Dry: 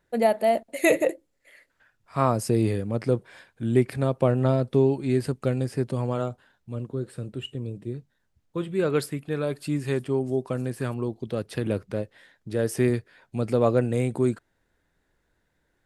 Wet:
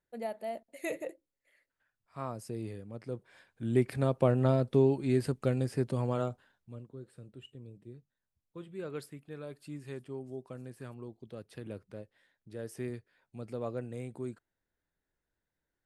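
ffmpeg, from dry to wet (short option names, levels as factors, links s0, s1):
-af "volume=0.596,afade=t=in:st=3.08:d=0.93:silence=0.251189,afade=t=out:st=6.28:d=0.57:silence=0.266073"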